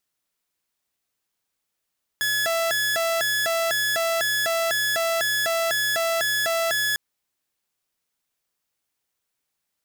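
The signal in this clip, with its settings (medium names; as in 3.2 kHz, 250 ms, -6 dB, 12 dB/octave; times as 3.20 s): siren hi-lo 664–1700 Hz 2 per s saw -18.5 dBFS 4.75 s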